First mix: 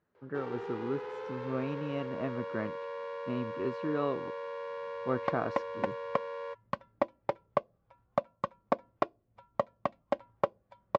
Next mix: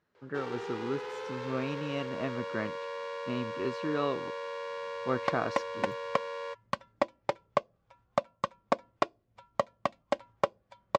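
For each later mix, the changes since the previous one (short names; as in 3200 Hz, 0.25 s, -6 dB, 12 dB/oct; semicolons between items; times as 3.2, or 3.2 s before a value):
master: remove LPF 1300 Hz 6 dB/oct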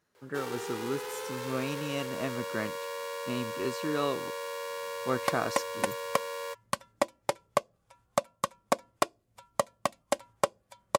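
master: remove air absorption 180 m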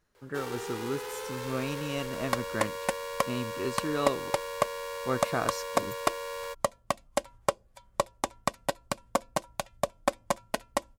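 second sound: entry -2.95 s; master: remove HPF 120 Hz 12 dB/oct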